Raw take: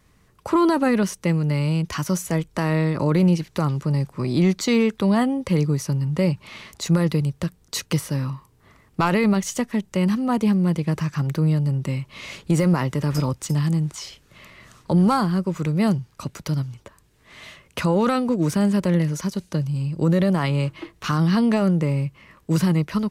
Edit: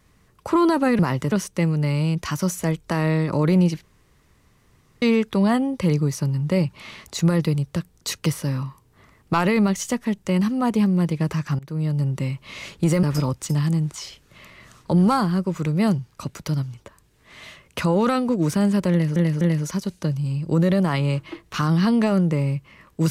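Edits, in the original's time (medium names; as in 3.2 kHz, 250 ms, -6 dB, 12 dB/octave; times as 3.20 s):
3.50–4.69 s: room tone
11.26–11.68 s: fade in, from -22.5 dB
12.70–13.03 s: move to 0.99 s
18.91–19.16 s: loop, 3 plays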